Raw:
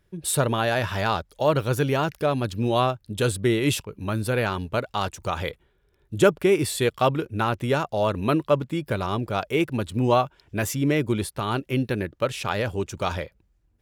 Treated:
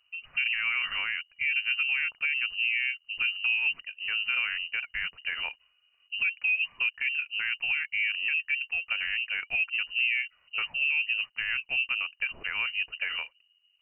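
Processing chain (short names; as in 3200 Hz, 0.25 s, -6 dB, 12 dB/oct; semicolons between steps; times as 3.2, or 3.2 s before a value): treble ducked by the level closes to 750 Hz, closed at -17.5 dBFS; limiter -16 dBFS, peak gain reduction 8.5 dB; inverted band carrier 2900 Hz; bell 300 Hz -12.5 dB 2.2 oct; gain -3.5 dB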